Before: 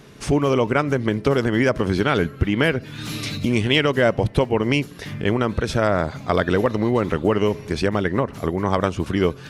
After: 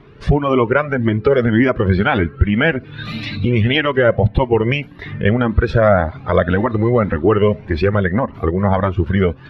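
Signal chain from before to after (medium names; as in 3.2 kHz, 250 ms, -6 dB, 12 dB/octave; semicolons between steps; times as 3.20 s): spectral noise reduction 9 dB; in parallel at -1.5 dB: compression, threshold -29 dBFS, peak gain reduction 15 dB; on the sum: distance through air 380 m; loudness maximiser +8.5 dB; Shepard-style flanger rising 1.8 Hz; trim +2.5 dB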